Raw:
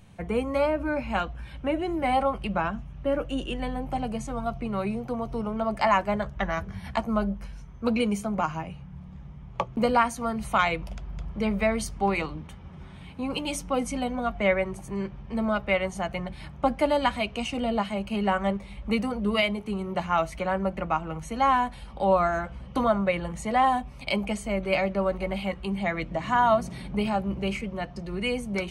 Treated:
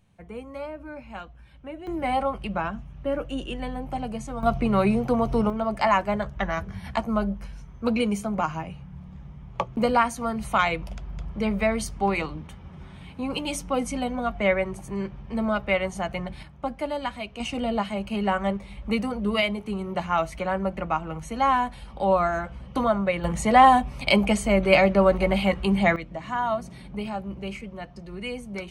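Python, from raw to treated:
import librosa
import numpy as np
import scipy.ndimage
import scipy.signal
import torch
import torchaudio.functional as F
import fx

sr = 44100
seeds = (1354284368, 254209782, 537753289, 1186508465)

y = fx.gain(x, sr, db=fx.steps((0.0, -11.0), (1.87, -1.0), (4.43, 8.0), (5.5, 1.0), (16.43, -6.0), (17.4, 0.5), (23.24, 7.5), (25.96, -5.0)))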